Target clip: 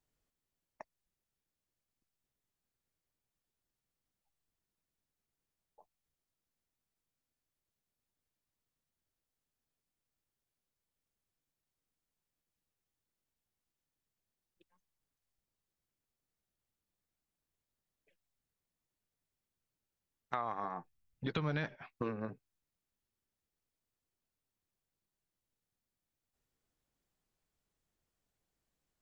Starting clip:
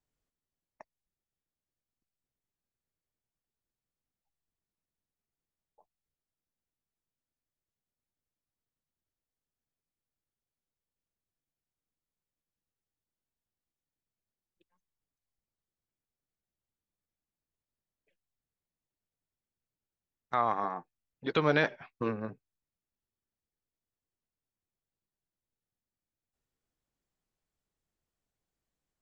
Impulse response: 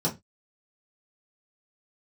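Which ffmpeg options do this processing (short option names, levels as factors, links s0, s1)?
-filter_complex "[0:a]asettb=1/sr,asplit=3[s0][s1][s2];[s0]atrim=end=20.354[s3];[s1]atrim=start=20.35:end=21.75,asetpts=PTS-STARTPTS,afade=t=in:d=0.004:c=qsin,afade=t=out:st=1.396:d=0.004:c=qsin,asubboost=boost=11:cutoff=180[s4];[s2]atrim=start=21.746[s5];[s3][s4]acrossfade=d=0.004:c1=hsin:c2=qsin[s6];[s6][s5]acrossfade=d=0.004:c1=qsin:c2=hsin,acompressor=threshold=0.0141:ratio=4,volume=1.26"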